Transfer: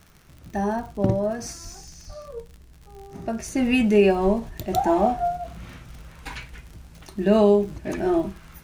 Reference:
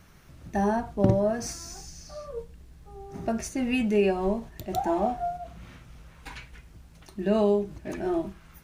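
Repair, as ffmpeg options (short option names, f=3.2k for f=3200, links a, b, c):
-filter_complex "[0:a]adeclick=t=4,asplit=3[a][b][c];[a]afade=t=out:st=1.63:d=0.02[d];[b]highpass=f=140:w=0.5412,highpass=f=140:w=1.3066,afade=t=in:st=1.63:d=0.02,afade=t=out:st=1.75:d=0.02[e];[c]afade=t=in:st=1.75:d=0.02[f];[d][e][f]amix=inputs=3:normalize=0,asplit=3[g][h][i];[g]afade=t=out:st=2.06:d=0.02[j];[h]highpass=f=140:w=0.5412,highpass=f=140:w=1.3066,afade=t=in:st=2.06:d=0.02,afade=t=out:st=2.18:d=0.02[k];[i]afade=t=in:st=2.18:d=0.02[l];[j][k][l]amix=inputs=3:normalize=0,asplit=3[m][n][o];[m]afade=t=out:st=4.46:d=0.02[p];[n]highpass=f=140:w=0.5412,highpass=f=140:w=1.3066,afade=t=in:st=4.46:d=0.02,afade=t=out:st=4.58:d=0.02[q];[o]afade=t=in:st=4.58:d=0.02[r];[p][q][r]amix=inputs=3:normalize=0,asetnsamples=n=441:p=0,asendcmd='3.48 volume volume -6dB',volume=0dB"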